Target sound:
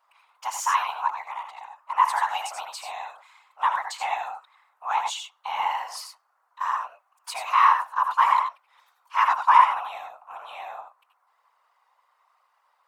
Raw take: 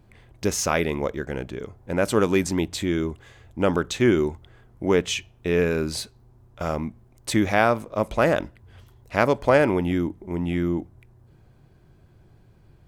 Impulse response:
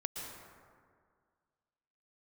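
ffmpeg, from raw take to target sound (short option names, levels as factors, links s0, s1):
-filter_complex "[0:a]highpass=f=600:t=q:w=3.6,afreqshift=430[s0];[1:a]atrim=start_sample=2205,atrim=end_sample=6615,asetrate=66150,aresample=44100[s1];[s0][s1]afir=irnorm=-1:irlink=0,afftfilt=real='hypot(re,im)*cos(2*PI*random(0))':imag='hypot(re,im)*sin(2*PI*random(1))':win_size=512:overlap=0.75,volume=1.78"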